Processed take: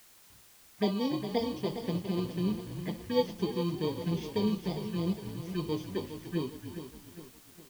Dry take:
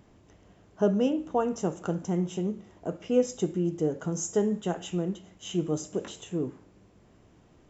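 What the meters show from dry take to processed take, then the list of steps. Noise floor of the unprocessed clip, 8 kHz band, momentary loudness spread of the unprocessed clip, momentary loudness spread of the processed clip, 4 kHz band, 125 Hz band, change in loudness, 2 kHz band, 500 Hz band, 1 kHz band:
-59 dBFS, no reading, 9 LU, 12 LU, +3.0 dB, -1.5 dB, -3.5 dB, -0.5 dB, -5.0 dB, -3.5 dB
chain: bit-reversed sample order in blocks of 32 samples; gate with hold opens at -45 dBFS; treble shelf 3.7 kHz +6 dB; touch-sensitive phaser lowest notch 530 Hz, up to 1.7 kHz, full sweep at -24 dBFS; vibrato 8.8 Hz 5.9 cents; flange 0.76 Hz, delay 3.7 ms, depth 7.5 ms, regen +40%; distance through air 200 m; frequency-shifting echo 294 ms, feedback 31%, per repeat -58 Hz, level -12 dB; word length cut 10-bit, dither triangular; bit-crushed delay 409 ms, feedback 55%, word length 9-bit, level -10 dB; trim +2 dB

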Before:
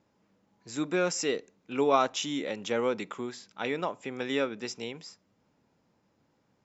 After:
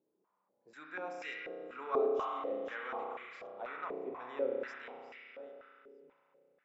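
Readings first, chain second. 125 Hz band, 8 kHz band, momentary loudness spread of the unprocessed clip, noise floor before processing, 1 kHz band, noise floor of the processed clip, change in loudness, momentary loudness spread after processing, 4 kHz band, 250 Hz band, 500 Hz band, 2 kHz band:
under -20 dB, no reading, 13 LU, -72 dBFS, -7.5 dB, -81 dBFS, -8.0 dB, 18 LU, -19.0 dB, -15.5 dB, -6.5 dB, -7.5 dB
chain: chunks repeated in reverse 613 ms, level -13 dB; spring tank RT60 2.8 s, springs 32 ms, chirp 75 ms, DRR -1.5 dB; step-sequenced band-pass 4.1 Hz 400–2100 Hz; trim -2.5 dB

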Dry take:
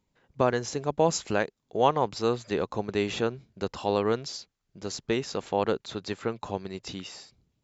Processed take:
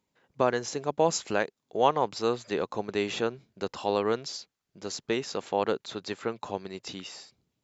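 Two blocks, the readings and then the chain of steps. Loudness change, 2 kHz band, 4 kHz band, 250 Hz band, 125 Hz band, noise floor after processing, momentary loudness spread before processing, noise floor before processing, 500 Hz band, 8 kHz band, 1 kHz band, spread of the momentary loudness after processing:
-1.0 dB, 0.0 dB, 0.0 dB, -2.5 dB, -6.0 dB, -83 dBFS, 13 LU, -78 dBFS, -1.0 dB, no reading, -0.5 dB, 13 LU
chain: high-pass 230 Hz 6 dB/octave

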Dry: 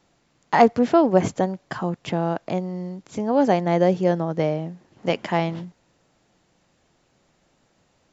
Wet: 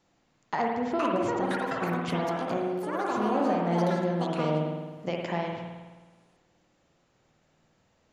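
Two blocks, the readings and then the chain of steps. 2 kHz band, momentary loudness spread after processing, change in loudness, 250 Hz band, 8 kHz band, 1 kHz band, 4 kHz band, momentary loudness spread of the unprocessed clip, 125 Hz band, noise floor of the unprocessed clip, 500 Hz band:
-4.0 dB, 9 LU, -7.0 dB, -6.5 dB, no reading, -5.5 dB, -4.5 dB, 13 LU, -6.0 dB, -65 dBFS, -7.5 dB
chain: compression 3:1, threshold -22 dBFS, peak gain reduction 10.5 dB; ever faster or slower copies 622 ms, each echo +6 st, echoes 2; spring tank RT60 1.3 s, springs 52 ms, chirp 60 ms, DRR 0 dB; trim -6.5 dB

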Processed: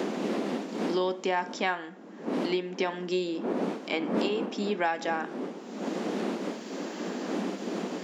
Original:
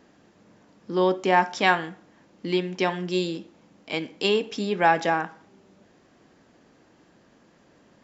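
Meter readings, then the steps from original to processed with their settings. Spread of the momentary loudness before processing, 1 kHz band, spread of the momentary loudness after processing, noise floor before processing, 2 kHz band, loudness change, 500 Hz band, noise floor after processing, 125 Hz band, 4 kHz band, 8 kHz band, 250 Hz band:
12 LU, -7.5 dB, 8 LU, -59 dBFS, -7.0 dB, -7.0 dB, -3.0 dB, -43 dBFS, -5.5 dB, -5.5 dB, no reading, +0.5 dB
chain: wind noise 330 Hz -30 dBFS; brick-wall FIR high-pass 180 Hz; three bands compressed up and down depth 100%; trim -5 dB

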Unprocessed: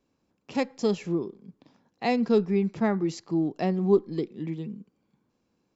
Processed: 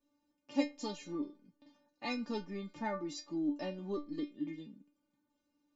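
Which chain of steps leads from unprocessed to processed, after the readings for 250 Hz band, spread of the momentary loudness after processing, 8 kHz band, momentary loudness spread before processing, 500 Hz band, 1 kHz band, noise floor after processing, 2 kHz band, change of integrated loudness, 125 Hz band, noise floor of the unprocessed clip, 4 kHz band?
-11.0 dB, 8 LU, no reading, 11 LU, -15.5 dB, -10.5 dB, -82 dBFS, -8.5 dB, -12.5 dB, -18.5 dB, -75 dBFS, -5.0 dB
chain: inharmonic resonator 290 Hz, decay 0.26 s, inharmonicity 0.002; trim +7.5 dB

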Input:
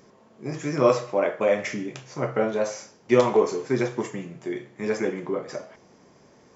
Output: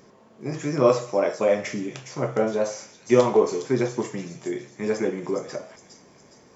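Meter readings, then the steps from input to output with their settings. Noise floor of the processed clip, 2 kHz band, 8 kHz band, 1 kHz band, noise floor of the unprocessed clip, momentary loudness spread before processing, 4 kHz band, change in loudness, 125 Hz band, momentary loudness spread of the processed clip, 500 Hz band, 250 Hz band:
-54 dBFS, -2.0 dB, no reading, 0.0 dB, -56 dBFS, 14 LU, +1.0 dB, +1.0 dB, +1.5 dB, 13 LU, +1.0 dB, +1.5 dB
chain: on a send: feedback echo behind a high-pass 412 ms, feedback 46%, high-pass 5.4 kHz, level -3 dB; on the sum: dynamic bell 2 kHz, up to -4 dB, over -40 dBFS, Q 0.77; trim +1.5 dB

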